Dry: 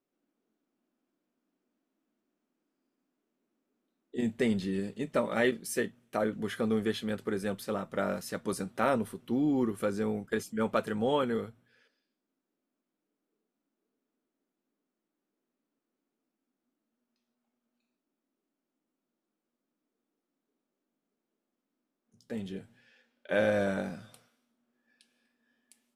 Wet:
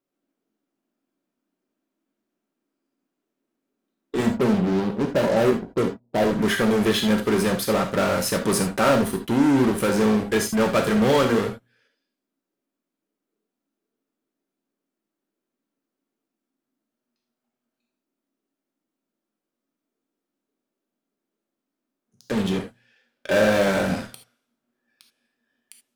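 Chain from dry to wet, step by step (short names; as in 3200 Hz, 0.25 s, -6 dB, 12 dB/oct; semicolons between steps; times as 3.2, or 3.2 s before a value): 4.28–6.31 Chebyshev low-pass 970 Hz, order 5; in parallel at -8.5 dB: fuzz box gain 40 dB, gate -49 dBFS; on the sum: non-linear reverb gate 0.1 s flat, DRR 4 dB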